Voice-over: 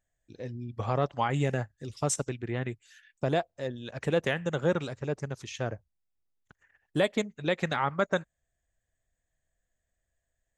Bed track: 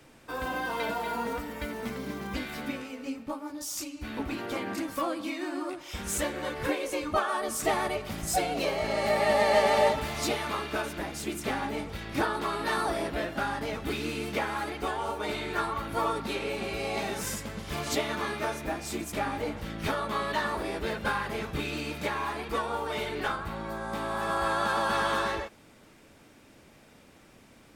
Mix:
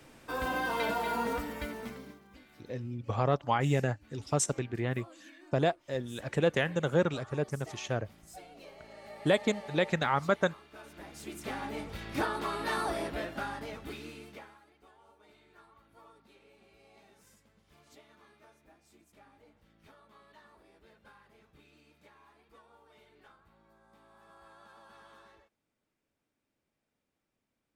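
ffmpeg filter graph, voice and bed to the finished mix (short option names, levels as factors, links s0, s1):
-filter_complex "[0:a]adelay=2300,volume=1[s0];[1:a]volume=8.41,afade=t=out:st=1.41:d=0.8:silence=0.0794328,afade=t=in:st=10.71:d=1.29:silence=0.11885,afade=t=out:st=12.97:d=1.63:silence=0.0530884[s1];[s0][s1]amix=inputs=2:normalize=0"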